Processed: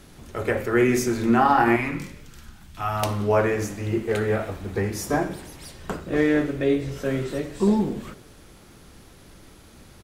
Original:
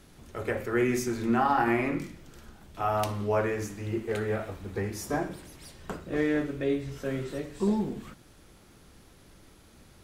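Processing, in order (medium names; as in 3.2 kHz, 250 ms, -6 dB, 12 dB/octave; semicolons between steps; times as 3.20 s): 1.76–3.03 s: peaking EQ 480 Hz -14 dB 1.5 oct; frequency-shifting echo 91 ms, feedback 63%, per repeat +47 Hz, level -23.5 dB; trim +6.5 dB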